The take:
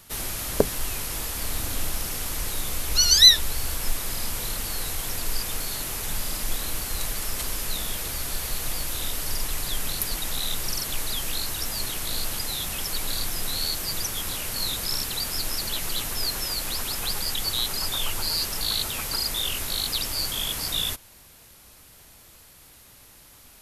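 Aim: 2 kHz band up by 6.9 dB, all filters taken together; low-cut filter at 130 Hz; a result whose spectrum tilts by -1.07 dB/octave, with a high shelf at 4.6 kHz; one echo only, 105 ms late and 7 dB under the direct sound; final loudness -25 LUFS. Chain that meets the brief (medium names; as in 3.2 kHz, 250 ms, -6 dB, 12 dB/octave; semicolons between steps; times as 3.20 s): high-pass 130 Hz; peaking EQ 2 kHz +9 dB; treble shelf 4.6 kHz -3.5 dB; delay 105 ms -7 dB; trim -0.5 dB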